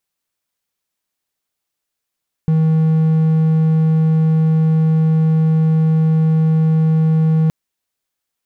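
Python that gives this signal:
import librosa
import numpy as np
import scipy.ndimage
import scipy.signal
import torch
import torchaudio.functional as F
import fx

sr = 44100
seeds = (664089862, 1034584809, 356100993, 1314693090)

y = 10.0 ** (-8.5 / 20.0) * (1.0 - 4.0 * np.abs(np.mod(159.0 * (np.arange(round(5.02 * sr)) / sr) + 0.25, 1.0) - 0.5))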